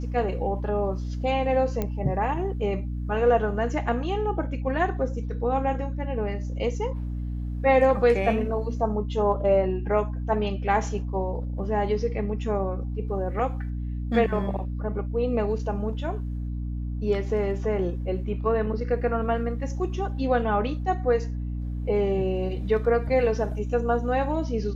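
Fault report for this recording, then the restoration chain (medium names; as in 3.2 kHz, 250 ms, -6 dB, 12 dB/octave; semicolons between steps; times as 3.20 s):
hum 60 Hz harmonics 5 -30 dBFS
1.82 s: pop -14 dBFS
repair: de-click; de-hum 60 Hz, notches 5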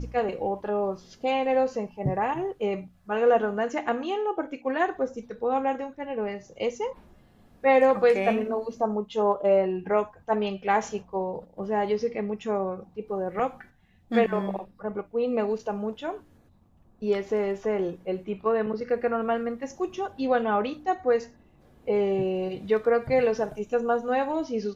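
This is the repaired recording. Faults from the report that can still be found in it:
nothing left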